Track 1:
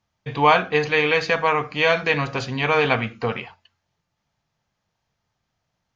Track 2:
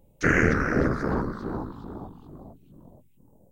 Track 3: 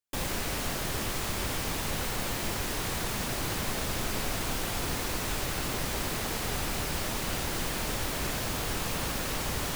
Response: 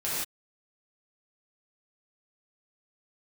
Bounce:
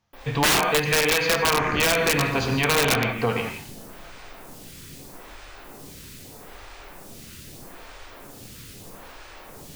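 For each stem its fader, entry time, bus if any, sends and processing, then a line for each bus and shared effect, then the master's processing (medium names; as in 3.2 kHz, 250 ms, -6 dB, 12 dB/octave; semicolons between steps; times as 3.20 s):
0.0 dB, 0.00 s, send -10 dB, none
-8.0 dB, 1.30 s, send -13 dB, saturation -10 dBFS, distortion -21 dB
-12.5 dB, 0.00 s, send -7 dB, lamp-driven phase shifter 0.79 Hz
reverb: on, pre-delay 3 ms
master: integer overflow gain 8.5 dB; compression 2.5:1, threshold -19 dBFS, peak gain reduction 5.5 dB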